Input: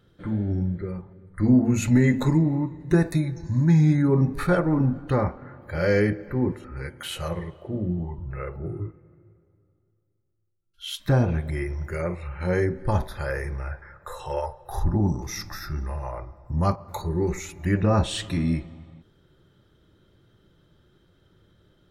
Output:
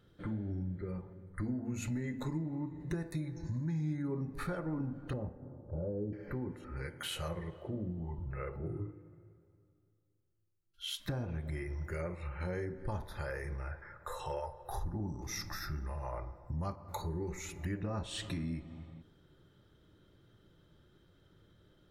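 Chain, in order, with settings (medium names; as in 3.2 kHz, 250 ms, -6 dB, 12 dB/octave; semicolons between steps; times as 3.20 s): 5.13–6.13 s: Bessel low-pass 510 Hz, order 8; compression 5:1, threshold -31 dBFS, peak gain reduction 16 dB; FDN reverb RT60 1.6 s, low-frequency decay 0.75×, high-frequency decay 0.35×, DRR 15.5 dB; trim -4.5 dB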